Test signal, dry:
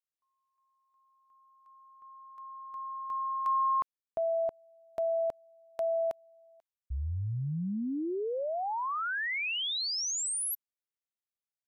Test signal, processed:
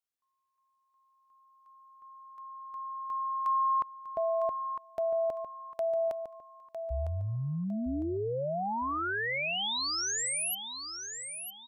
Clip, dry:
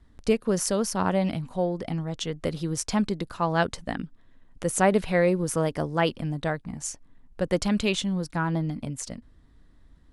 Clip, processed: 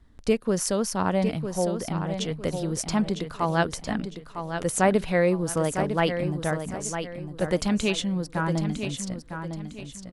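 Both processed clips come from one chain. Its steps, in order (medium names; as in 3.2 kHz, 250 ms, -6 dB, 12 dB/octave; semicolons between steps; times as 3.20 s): feedback delay 955 ms, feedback 33%, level -8 dB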